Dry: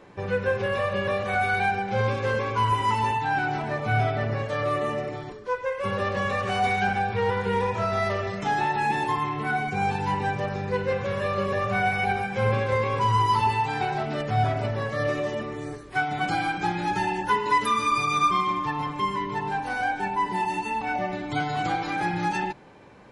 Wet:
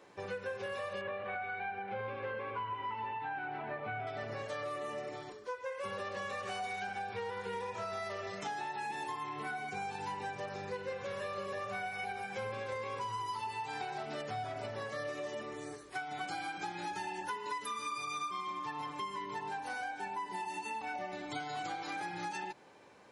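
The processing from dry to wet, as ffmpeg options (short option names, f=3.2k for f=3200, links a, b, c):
-filter_complex "[0:a]asettb=1/sr,asplit=3[a][b][c];[a]atrim=end=1.014[d];[b]atrim=start=1.01:end=4.07,asetpts=PTS-STARTPTS,afade=t=in:d=0.004:c=qsin,afade=t=out:st=3.056:d=0.004:c=qsin,lowpass=f=2.8k:w=0.5412,lowpass=f=2.8k:w=1.3066[e];[c]atrim=start=4.066[f];[d][e]acrossfade=d=0.004:c1=hsin:c2=qsin[g];[g][f]acrossfade=d=0.004:c1=qsin:c2=hsin,highpass=49,bass=f=250:g=-10,treble=f=4k:g=7,acompressor=threshold=-29dB:ratio=6,volume=-7.5dB"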